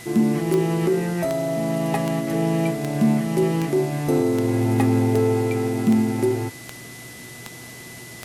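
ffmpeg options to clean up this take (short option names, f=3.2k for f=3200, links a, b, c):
-af "adeclick=t=4,bandreject=f=121.6:t=h:w=4,bandreject=f=243.2:t=h:w=4,bandreject=f=364.8:t=h:w=4,bandreject=f=486.4:t=h:w=4,bandreject=f=2k:w=30,afwtdn=0.0089"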